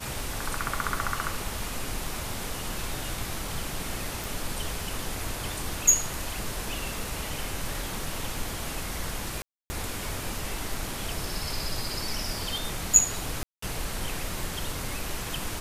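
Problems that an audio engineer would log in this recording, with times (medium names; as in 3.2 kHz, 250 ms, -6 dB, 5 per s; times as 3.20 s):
4.24 s: pop
9.42–9.70 s: dropout 280 ms
13.43–13.62 s: dropout 194 ms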